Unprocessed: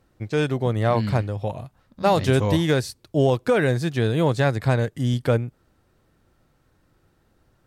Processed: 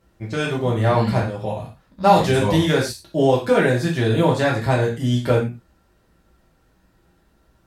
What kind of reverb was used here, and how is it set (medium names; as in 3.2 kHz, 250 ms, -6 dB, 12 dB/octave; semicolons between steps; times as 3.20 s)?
gated-style reverb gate 140 ms falling, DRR -4 dB; trim -1.5 dB